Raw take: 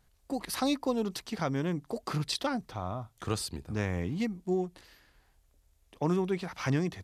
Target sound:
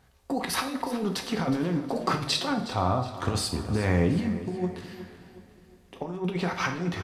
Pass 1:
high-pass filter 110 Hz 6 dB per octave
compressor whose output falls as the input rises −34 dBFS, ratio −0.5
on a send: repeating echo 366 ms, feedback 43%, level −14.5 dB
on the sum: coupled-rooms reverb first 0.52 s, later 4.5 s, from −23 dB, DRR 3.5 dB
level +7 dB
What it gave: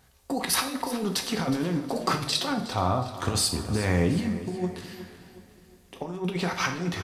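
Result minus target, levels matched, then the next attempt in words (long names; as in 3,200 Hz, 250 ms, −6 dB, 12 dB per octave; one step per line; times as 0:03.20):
8,000 Hz band +5.5 dB
high-pass filter 110 Hz 6 dB per octave
high-shelf EQ 4,100 Hz −9 dB
compressor whose output falls as the input rises −34 dBFS, ratio −0.5
on a send: repeating echo 366 ms, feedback 43%, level −14.5 dB
on the sum: coupled-rooms reverb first 0.52 s, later 4.5 s, from −23 dB, DRR 3.5 dB
level +7 dB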